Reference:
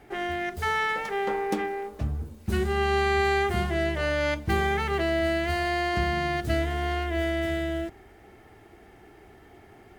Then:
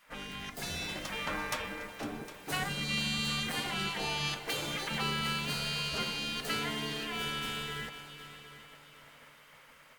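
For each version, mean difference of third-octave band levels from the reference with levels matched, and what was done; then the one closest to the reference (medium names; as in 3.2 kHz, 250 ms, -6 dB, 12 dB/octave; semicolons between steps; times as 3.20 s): 11.0 dB: spectral gate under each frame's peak -15 dB weak; level rider gain up to 4 dB; on a send: multi-head delay 253 ms, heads second and third, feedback 40%, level -15 dB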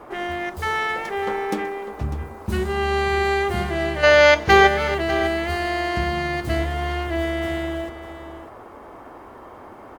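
4.0 dB: time-frequency box 4.04–4.67 s, 370–7000 Hz +12 dB; band noise 240–1200 Hz -45 dBFS; delay 599 ms -13 dB; trim +2.5 dB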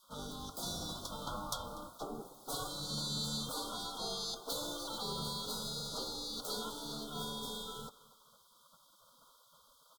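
15.0 dB: spectral gate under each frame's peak -20 dB weak; Chebyshev band-stop 1.4–3.3 kHz, order 5; feedback delay 243 ms, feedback 37%, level -21 dB; trim +4.5 dB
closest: second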